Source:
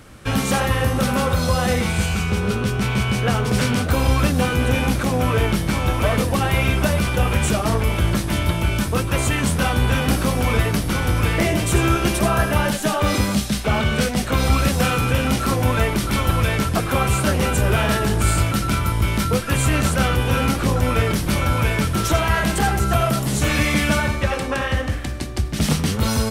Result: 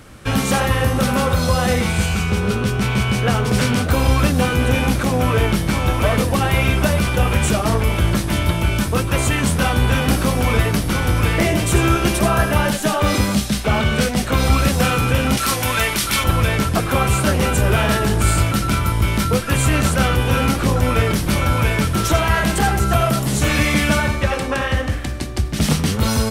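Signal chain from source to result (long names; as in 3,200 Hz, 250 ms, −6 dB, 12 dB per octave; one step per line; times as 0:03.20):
0:15.37–0:16.24: tilt shelving filter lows −7.5 dB, about 1,100 Hz
level +2 dB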